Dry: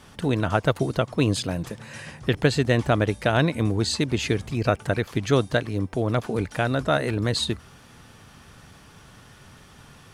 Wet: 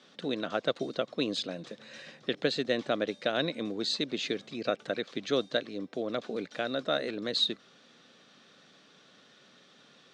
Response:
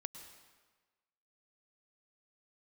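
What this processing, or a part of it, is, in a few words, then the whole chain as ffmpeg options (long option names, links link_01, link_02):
television speaker: -af "highpass=frequency=200:width=0.5412,highpass=frequency=200:width=1.3066,equalizer=frequency=540:width_type=q:width=4:gain=5,equalizer=frequency=920:width_type=q:width=4:gain=-9,equalizer=frequency=3800:width_type=q:width=4:gain=10,lowpass=frequency=6600:width=0.5412,lowpass=frequency=6600:width=1.3066,volume=-8.5dB"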